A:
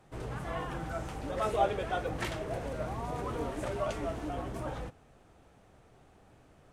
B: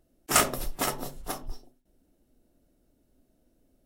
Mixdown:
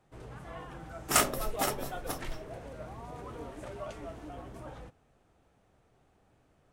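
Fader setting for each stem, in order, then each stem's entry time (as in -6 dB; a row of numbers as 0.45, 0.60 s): -7.5, -3.0 dB; 0.00, 0.80 s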